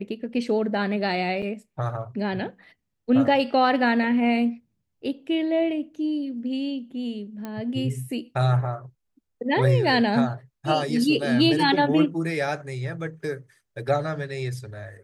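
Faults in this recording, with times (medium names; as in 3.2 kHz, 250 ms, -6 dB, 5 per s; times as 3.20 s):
1.42–1.43 s: dropout 6.4 ms
7.45 s: pop -20 dBFS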